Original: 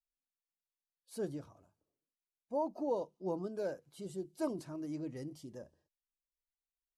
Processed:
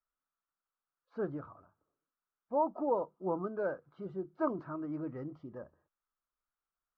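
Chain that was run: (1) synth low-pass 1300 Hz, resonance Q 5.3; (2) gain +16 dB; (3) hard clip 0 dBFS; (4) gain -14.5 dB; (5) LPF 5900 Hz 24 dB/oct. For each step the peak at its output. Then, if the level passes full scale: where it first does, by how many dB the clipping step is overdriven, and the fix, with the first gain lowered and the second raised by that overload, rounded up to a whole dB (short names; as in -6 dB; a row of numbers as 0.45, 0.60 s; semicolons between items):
-21.0, -5.0, -5.0, -19.5, -19.5 dBFS; no overload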